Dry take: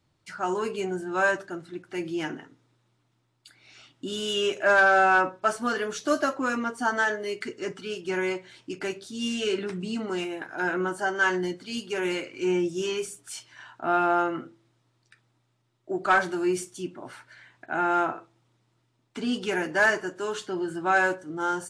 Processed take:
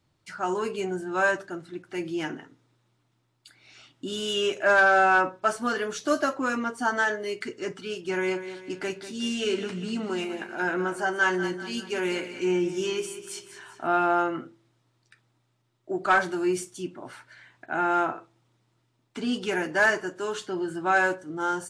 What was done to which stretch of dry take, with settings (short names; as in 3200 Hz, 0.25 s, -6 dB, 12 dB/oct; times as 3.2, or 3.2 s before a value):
8–13.87 feedback echo 0.194 s, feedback 47%, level -12 dB